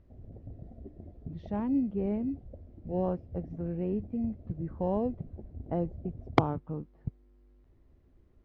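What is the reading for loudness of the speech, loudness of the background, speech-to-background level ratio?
-33.5 LUFS, -48.0 LUFS, 14.5 dB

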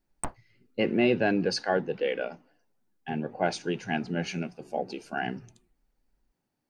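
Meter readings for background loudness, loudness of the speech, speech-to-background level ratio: -39.0 LUFS, -29.5 LUFS, 9.5 dB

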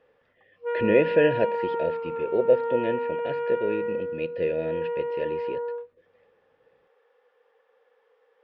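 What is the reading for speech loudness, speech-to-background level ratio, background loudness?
-27.0 LUFS, 3.0 dB, -30.0 LUFS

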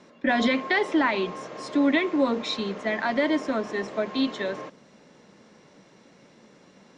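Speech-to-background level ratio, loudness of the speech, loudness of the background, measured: 13.0 dB, -25.5 LUFS, -38.5 LUFS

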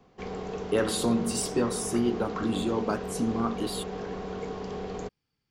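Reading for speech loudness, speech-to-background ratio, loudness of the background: -29.0 LUFS, 7.0 dB, -36.0 LUFS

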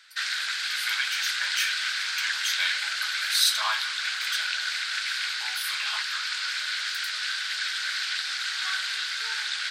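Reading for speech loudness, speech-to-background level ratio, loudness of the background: -29.5 LUFS, -2.0 dB, -27.5 LUFS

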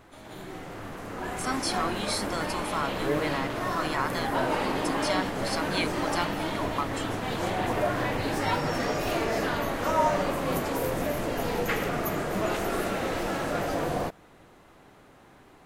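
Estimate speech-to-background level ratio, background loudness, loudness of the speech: -3.5 dB, -29.5 LUFS, -33.0 LUFS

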